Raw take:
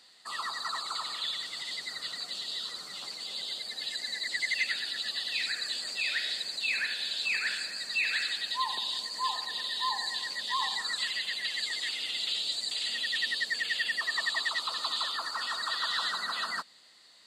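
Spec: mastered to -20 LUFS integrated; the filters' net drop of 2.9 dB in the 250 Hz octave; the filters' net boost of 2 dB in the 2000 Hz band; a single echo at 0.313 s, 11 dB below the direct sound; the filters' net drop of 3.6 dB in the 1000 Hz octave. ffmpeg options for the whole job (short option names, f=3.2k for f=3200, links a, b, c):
-af "equalizer=f=250:t=o:g=-3.5,equalizer=f=1k:t=o:g=-5,equalizer=f=2k:t=o:g=3.5,aecho=1:1:313:0.282,volume=9.5dB"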